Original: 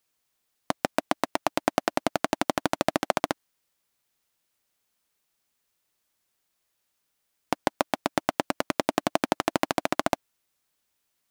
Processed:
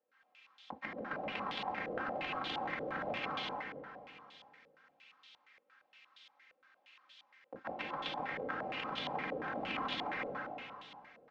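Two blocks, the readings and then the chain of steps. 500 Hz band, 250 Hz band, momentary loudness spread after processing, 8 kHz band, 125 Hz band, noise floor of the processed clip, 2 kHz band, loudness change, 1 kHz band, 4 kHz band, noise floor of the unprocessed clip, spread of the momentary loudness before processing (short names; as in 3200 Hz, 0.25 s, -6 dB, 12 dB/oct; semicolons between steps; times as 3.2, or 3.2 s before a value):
-13.0 dB, -15.0 dB, 17 LU, under -30 dB, -11.5 dB, -75 dBFS, -6.5 dB, -11.0 dB, -10.5 dB, -7.0 dB, -77 dBFS, 4 LU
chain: octaver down 1 oct, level +3 dB; HPF 120 Hz 12 dB/oct; differentiator; comb 3.8 ms, depth 93%; negative-ratio compressor -41 dBFS, ratio -0.5; limiter -28.5 dBFS, peak gain reduction 10 dB; air absorption 190 m; plate-style reverb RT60 2.5 s, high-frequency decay 0.9×, pre-delay 0.115 s, DRR -6.5 dB; stepped low-pass 8.6 Hz 520–3400 Hz; gain +10 dB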